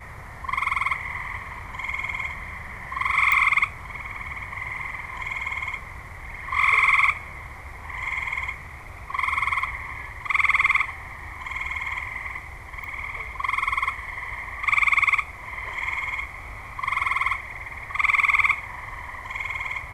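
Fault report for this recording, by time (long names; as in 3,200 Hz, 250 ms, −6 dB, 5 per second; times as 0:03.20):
0:03.32: click −9 dBFS
0:12.84: click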